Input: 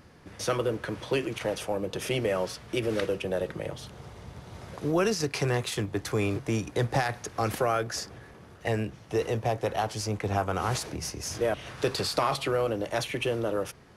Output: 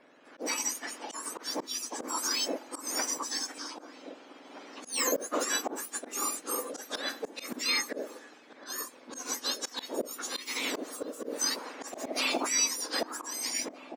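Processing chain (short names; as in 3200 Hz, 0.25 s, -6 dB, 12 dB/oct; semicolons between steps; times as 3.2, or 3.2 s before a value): spectrum mirrored in octaves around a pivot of 1700 Hz; low-pass opened by the level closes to 2800 Hz, open at -31 dBFS; auto swell 0.169 s; outdoor echo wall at 270 m, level -11 dB; gain +2.5 dB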